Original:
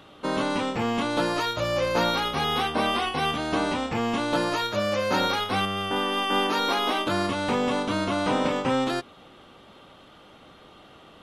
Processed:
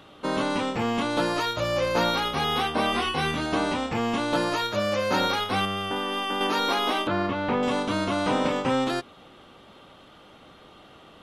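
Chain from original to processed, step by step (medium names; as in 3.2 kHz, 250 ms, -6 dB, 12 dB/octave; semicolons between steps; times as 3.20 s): 2.90–3.46 s: doubling 25 ms -4.5 dB; 5.73–6.41 s: compression 5:1, threshold -25 dBFS, peak gain reduction 6 dB; 7.07–7.63 s: low-pass 2.6 kHz 12 dB/octave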